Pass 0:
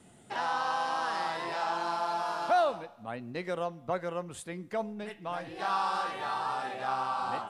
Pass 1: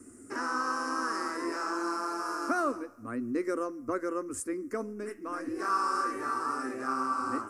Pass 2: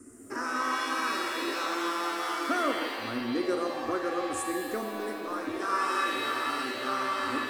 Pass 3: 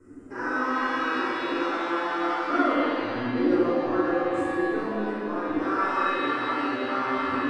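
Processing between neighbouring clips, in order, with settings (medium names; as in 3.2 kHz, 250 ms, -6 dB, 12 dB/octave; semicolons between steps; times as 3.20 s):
FFT filter 110 Hz 0 dB, 160 Hz -23 dB, 270 Hz +13 dB, 480 Hz -1 dB, 800 Hz -18 dB, 1.2 kHz +3 dB, 2.4 kHz -9 dB, 3.5 kHz -28 dB, 5.3 kHz +2 dB, 7.9 kHz +5 dB; trim +3 dB
pitch-shifted reverb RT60 1.8 s, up +7 st, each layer -2 dB, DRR 4.5 dB
tape spacing loss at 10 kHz 26 dB; simulated room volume 700 m³, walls mixed, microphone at 4.8 m; trim -3.5 dB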